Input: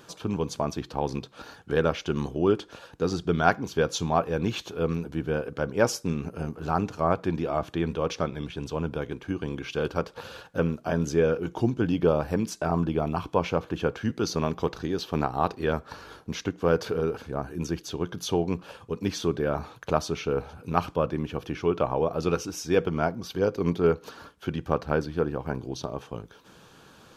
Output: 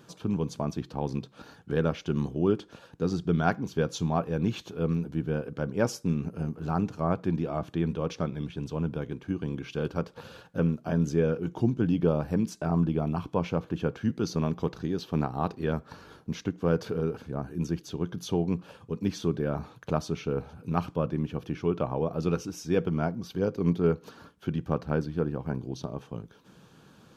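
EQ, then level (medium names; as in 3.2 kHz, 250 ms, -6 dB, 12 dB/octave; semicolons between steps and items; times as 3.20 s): peaking EQ 170 Hz +9 dB 1.8 oct; -6.5 dB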